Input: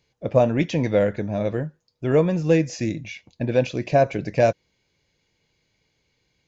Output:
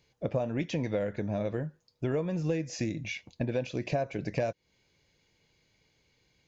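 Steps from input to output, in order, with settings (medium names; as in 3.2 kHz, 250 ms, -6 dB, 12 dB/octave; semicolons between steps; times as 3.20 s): compression 6:1, threshold -28 dBFS, peak gain reduction 15.5 dB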